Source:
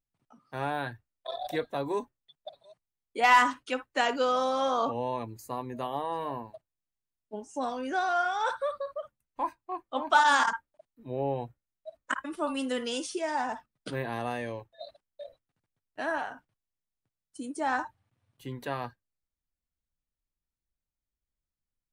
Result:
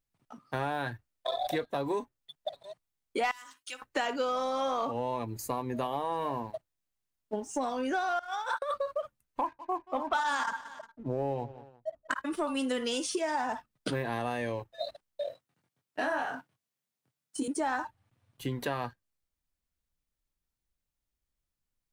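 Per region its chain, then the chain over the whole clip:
3.31–3.82 pre-emphasis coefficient 0.97 + compressor 2:1, threshold -49 dBFS
8.19–8.74 gate -43 dBFS, range -22 dB + HPF 610 Hz + negative-ratio compressor -36 dBFS, ratio -0.5
9.41–12.11 low-pass opened by the level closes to 720 Hz, open at -19.5 dBFS + feedback echo 0.178 s, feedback 33%, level -22 dB
15.25–17.48 HPF 110 Hz 24 dB/oct + doubler 23 ms -2 dB
whole clip: compressor 4:1, threshold -39 dBFS; sample leveller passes 1; gain +5.5 dB

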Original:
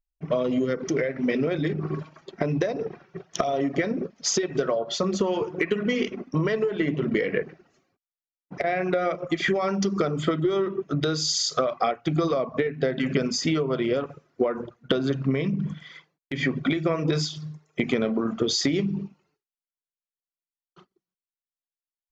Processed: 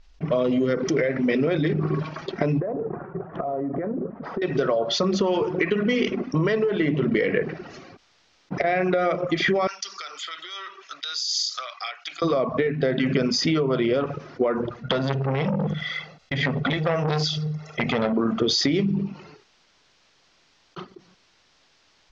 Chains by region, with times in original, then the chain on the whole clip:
2.6–4.42 LPF 1300 Hz 24 dB/oct + compressor 3:1, threshold -36 dBFS
9.67–12.22 HPF 1100 Hz + differentiator + tremolo 4.1 Hz, depth 53%
14.82–18.13 comb 1.5 ms + core saturation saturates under 1300 Hz
whole clip: steep low-pass 5800 Hz 36 dB/oct; fast leveller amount 50%

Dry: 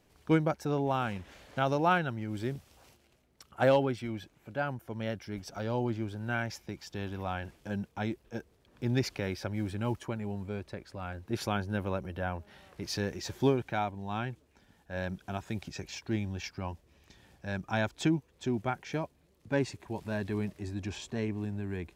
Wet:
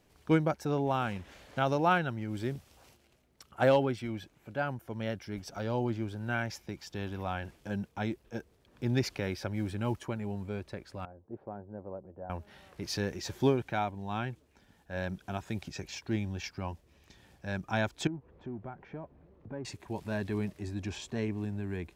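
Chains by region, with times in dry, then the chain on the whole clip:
11.05–12.3 CVSD 64 kbps + ladder low-pass 850 Hz, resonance 25% + tilt +2.5 dB/oct
18.07–19.65 G.711 law mismatch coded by mu + compressor 2:1, threshold -45 dBFS + LPF 1200 Hz
whole clip: dry

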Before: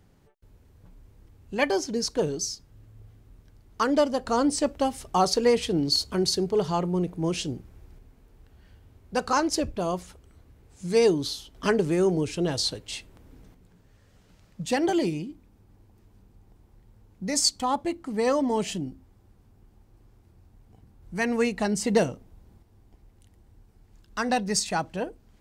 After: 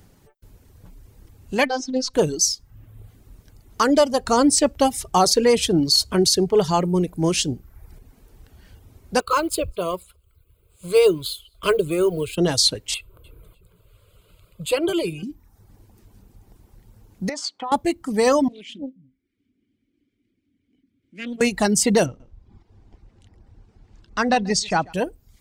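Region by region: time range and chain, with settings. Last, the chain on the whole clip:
1.65–2.14 LPF 4100 Hz + robotiser 258 Hz + Doppler distortion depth 0.1 ms
9.2–12.38 G.711 law mismatch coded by A + fixed phaser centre 1200 Hz, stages 8 + thin delay 0.203 s, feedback 31%, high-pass 2200 Hz, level -23.5 dB
12.94–15.23 fixed phaser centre 1200 Hz, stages 8 + feedback echo 0.3 s, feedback 21%, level -21.5 dB
17.29–17.72 BPF 410–2200 Hz + compressor 5:1, threshold -33 dBFS
18.48–21.41 vowel filter i + bands offset in time highs, lows 0.21 s, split 160 Hz + Doppler distortion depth 0.44 ms
22.06–24.93 air absorption 130 m + echo 0.138 s -14 dB
whole clip: reverb removal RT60 0.65 s; high shelf 5600 Hz +9 dB; maximiser +13 dB; gain -6 dB

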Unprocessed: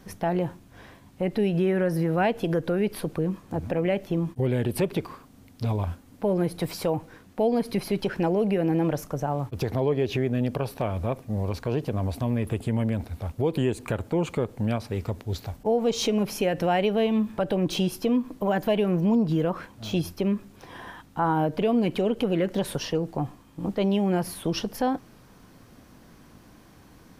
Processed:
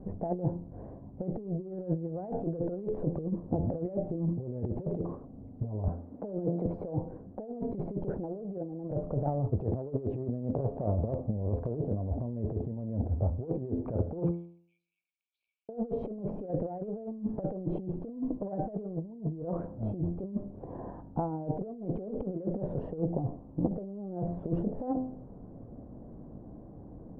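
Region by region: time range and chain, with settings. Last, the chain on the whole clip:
5.88–6.66 HPF 160 Hz 24 dB/oct + air absorption 220 m + mismatched tape noise reduction encoder only
14.31–15.69 brick-wall FIR high-pass 2200 Hz + tilt -2.5 dB/oct + sustainer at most 53 dB/s
whole clip: Chebyshev low-pass 650 Hz, order 3; de-hum 85.79 Hz, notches 20; negative-ratio compressor -31 dBFS, ratio -0.5

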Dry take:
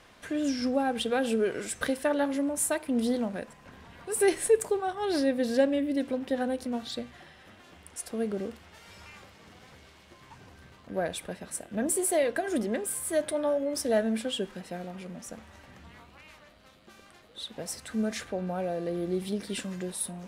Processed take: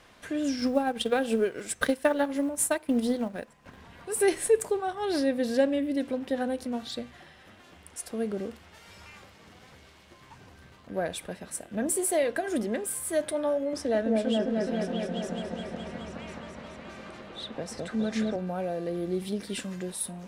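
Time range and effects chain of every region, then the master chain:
0.52–3.8 block floating point 7-bit + transient shaper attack +5 dB, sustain -7 dB
13.73–18.36 air absorption 59 m + repeats that get brighter 0.21 s, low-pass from 750 Hz, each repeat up 1 oct, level 0 dB + three-band squash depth 40%
whole clip: dry

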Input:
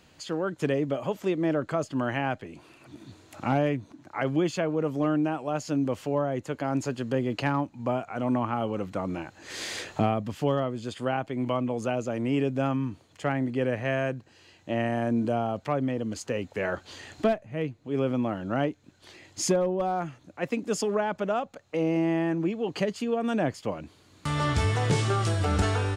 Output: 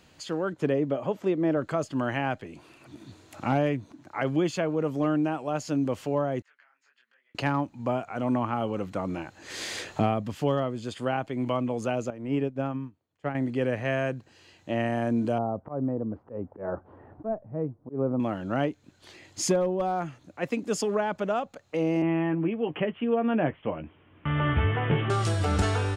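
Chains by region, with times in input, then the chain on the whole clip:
0.53–1.57 HPF 370 Hz 6 dB/oct + tilt -3 dB/oct
6.42–7.35 compressor, threshold -36 dBFS + ladder band-pass 2000 Hz, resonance 50% + detuned doubles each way 45 cents
12.1–13.35 high shelf 3400 Hz -12 dB + upward expander 2.5:1, over -38 dBFS
15.38–18.2 LPF 1100 Hz 24 dB/oct + auto swell 0.122 s
22.02–25.1 steep low-pass 3200 Hz 96 dB/oct + doubler 13 ms -9 dB
whole clip: dry

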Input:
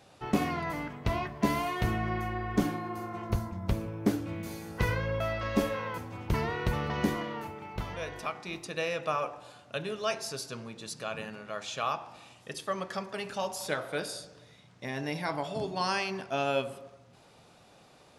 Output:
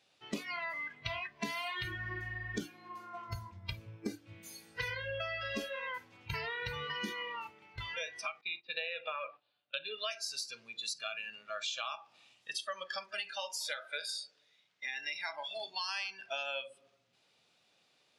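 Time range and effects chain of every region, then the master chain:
8.41–10.11 steep low-pass 4600 Hz 48 dB/oct + gate -46 dBFS, range -15 dB
13.3–15.97 HPF 530 Hz 6 dB/oct + high shelf 4400 Hz -3.5 dB
whole clip: spectral noise reduction 19 dB; weighting filter D; compressor 6:1, threshold -37 dBFS; gain +1 dB

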